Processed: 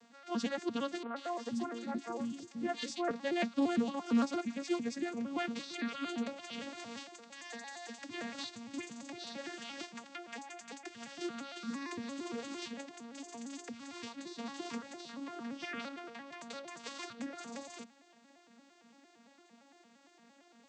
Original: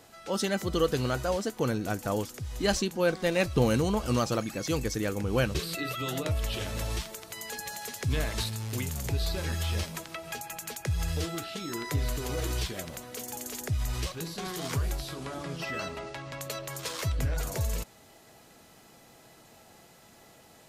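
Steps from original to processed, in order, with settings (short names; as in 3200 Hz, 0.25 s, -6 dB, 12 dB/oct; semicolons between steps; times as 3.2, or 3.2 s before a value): arpeggiated vocoder minor triad, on A#3, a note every 0.114 s; bell 450 Hz -10.5 dB 2.4 oct; 1.03–3.11 three bands offset in time mids, highs, lows 0.13/0.48 s, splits 300/2000 Hz; Doppler distortion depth 0.14 ms; gain +1.5 dB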